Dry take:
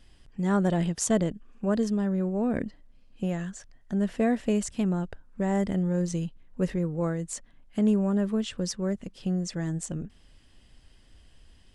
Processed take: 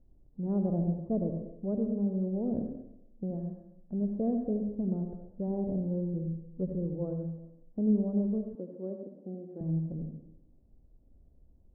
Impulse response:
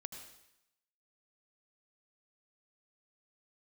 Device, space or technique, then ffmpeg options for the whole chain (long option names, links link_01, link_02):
next room: -filter_complex "[0:a]lowpass=frequency=630:width=0.5412,lowpass=frequency=630:width=1.3066[link_01];[1:a]atrim=start_sample=2205[link_02];[link_01][link_02]afir=irnorm=-1:irlink=0,asettb=1/sr,asplit=3[link_03][link_04][link_05];[link_03]atrim=end=8.554[link_06];[link_04]atrim=start=8.55:end=9.61,asetpts=PTS-STARTPTS,afade=type=in:duration=0.004:curve=qsin,afade=type=out:start_time=1.056:duration=0.004:curve=qsin,highpass=frequency=230:width=0.5412,highpass=frequency=230:width=1.3066[link_07];[link_05]atrim=start=9.606[link_08];[link_06][link_07]acrossfade=duration=0.004:curve1=hsin:curve2=qsin[link_09];[link_09][link_08]acrossfade=duration=0.004:curve1=qsin:curve2=hsin,volume=-1.5dB"